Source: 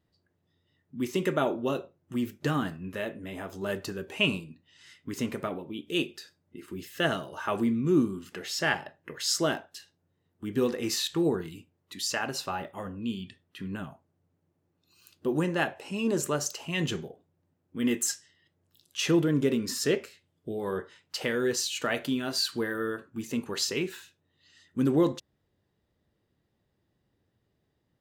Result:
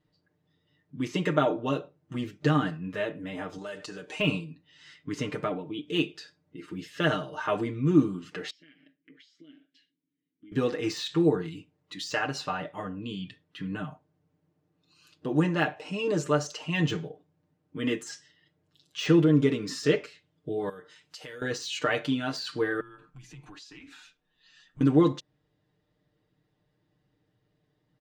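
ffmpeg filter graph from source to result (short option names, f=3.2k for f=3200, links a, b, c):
-filter_complex "[0:a]asettb=1/sr,asplit=3[a][b][c];[a]atrim=end=3.584[d];[b]atrim=start=3.58:end=4.2,asetpts=PTS-STARTPTS,afade=t=in:d=0.004:c=qsin,afade=t=out:st=0.616:d=0.004:c=qsin,lowpass=f=9.4k:w=0.5412,lowpass=f=9.4k:w=1.3066,aemphasis=mode=production:type=bsi,acompressor=threshold=-36dB:ratio=10:attack=3.2:release=140:knee=1:detection=peak[e];[c]atrim=start=4.196[f];[d][e]acrossfade=d=0.004:c1=hsin:c2=qsin[g];[g][f]acrossfade=d=0.004:c1=qsin:c2=hsin,asettb=1/sr,asplit=3[h][i][j];[h]atrim=end=8.504[k];[i]atrim=start=8.5:end=10.52,asetpts=PTS-STARTPTS,afade=t=in:d=0.004:c=qsin,afade=t=out:st=2.016:d=0.004:c=qsin,acompressor=threshold=-39dB:ratio=12:attack=3.2:release=140:knee=1:detection=peak,asplit=3[l][m][n];[l]bandpass=f=270:t=q:w=8,volume=0dB[o];[m]bandpass=f=2.29k:t=q:w=8,volume=-6dB[p];[n]bandpass=f=3.01k:t=q:w=8,volume=-9dB[q];[o][p][q]amix=inputs=3:normalize=0[r];[j]atrim=start=10.516[s];[k][r]acrossfade=d=0.004:c1=hsin:c2=qsin[t];[t][s]acrossfade=d=0.004:c1=qsin:c2=hsin,asettb=1/sr,asplit=3[u][v][w];[u]atrim=end=20.694[x];[v]atrim=start=20.69:end=21.42,asetpts=PTS-STARTPTS,afade=t=in:d=0.004:c=qsin,afade=t=out:st=0.726:d=0.004:c=qsin,aemphasis=mode=production:type=75fm,acompressor=threshold=-55dB:ratio=2:attack=3.2:release=140:knee=1:detection=peak[y];[w]atrim=start=21.416[z];[x][y]acrossfade=d=0.004:c1=hsin:c2=qsin[aa];[aa][z]acrossfade=d=0.004:c1=qsin:c2=hsin,asettb=1/sr,asplit=3[ab][ac][ad];[ab]atrim=end=22.804[ae];[ac]atrim=start=22.8:end=24.81,asetpts=PTS-STARTPTS,afade=t=in:d=0.004:c=qsin,afade=t=out:st=2.006:d=0.004:c=qsin,lowshelf=f=500:g=-8,acompressor=threshold=-47dB:ratio=8:attack=3.2:release=140:knee=1:detection=peak,afreqshift=-100[af];[ad]atrim=start=24.806[ag];[ae][af]acrossfade=d=0.004:c1=hsin:c2=qsin[ah];[ah][ag]acrossfade=d=0.004:c1=qsin:c2=hsin,lowpass=5.5k,deesser=0.9,aecho=1:1:6.6:0.85"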